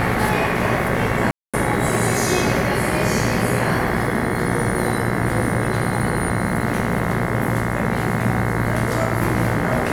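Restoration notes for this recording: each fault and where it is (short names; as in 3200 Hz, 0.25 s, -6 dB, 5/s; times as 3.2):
buzz 60 Hz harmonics 36 -25 dBFS
1.31–1.54 gap 0.226 s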